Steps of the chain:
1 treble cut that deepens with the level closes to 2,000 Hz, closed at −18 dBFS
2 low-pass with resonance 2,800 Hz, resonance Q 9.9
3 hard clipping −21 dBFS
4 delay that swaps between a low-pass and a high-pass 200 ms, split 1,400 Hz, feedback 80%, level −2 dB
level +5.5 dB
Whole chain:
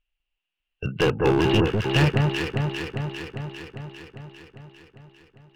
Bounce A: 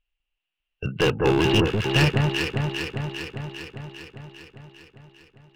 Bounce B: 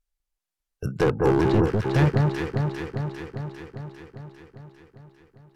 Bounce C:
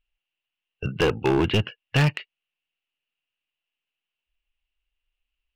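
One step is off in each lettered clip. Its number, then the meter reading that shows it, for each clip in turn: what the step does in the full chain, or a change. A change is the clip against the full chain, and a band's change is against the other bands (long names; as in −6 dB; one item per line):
1, 8 kHz band +4.5 dB
2, 4 kHz band −11.5 dB
4, echo-to-direct ratio −0.5 dB to none audible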